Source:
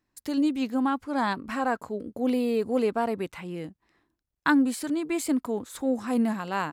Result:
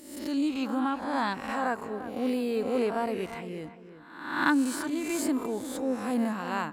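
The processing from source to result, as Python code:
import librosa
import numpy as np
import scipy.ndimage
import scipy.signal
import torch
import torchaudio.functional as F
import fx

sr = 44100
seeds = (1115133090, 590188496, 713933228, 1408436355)

y = fx.spec_swells(x, sr, rise_s=0.82)
y = fx.echo_filtered(y, sr, ms=345, feedback_pct=31, hz=2300.0, wet_db=-12.0)
y = y * librosa.db_to_amplitude(-4.0)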